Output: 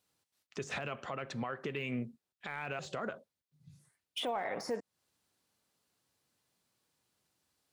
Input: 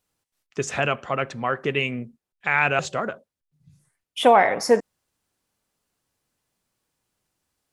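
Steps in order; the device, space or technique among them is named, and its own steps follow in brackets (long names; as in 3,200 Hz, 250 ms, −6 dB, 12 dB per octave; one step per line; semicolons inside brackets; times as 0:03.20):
broadcast voice chain (high-pass filter 80 Hz; de-essing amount 85%; downward compressor 5 to 1, threshold −29 dBFS, peak gain reduction 15.5 dB; parametric band 4,100 Hz +4 dB 0.67 octaves; brickwall limiter −25 dBFS, peak gain reduction 11.5 dB)
level −2.5 dB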